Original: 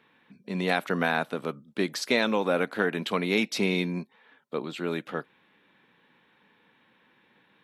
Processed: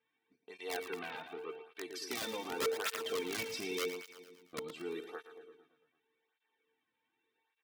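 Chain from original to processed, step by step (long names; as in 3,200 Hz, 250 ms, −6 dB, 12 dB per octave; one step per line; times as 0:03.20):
noise gate −51 dBFS, range −9 dB
comb filter 2.6 ms, depth 73%
in parallel at −2 dB: brickwall limiter −20.5 dBFS, peak gain reduction 11.5 dB
on the sum: tuned comb filter 450 Hz, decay 0.59 s, mix 90%
wrap-around overflow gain 28.5 dB
0:00.83–0:01.66: loudspeaker in its box 190–3,200 Hz, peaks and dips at 240 Hz −6 dB, 600 Hz −6 dB, 1,100 Hz +3 dB, 1,700 Hz −5 dB, 2,500 Hz +5 dB
repeating echo 113 ms, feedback 60%, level −10.5 dB
through-zero flanger with one copy inverted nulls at 0.86 Hz, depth 2.8 ms
level +1.5 dB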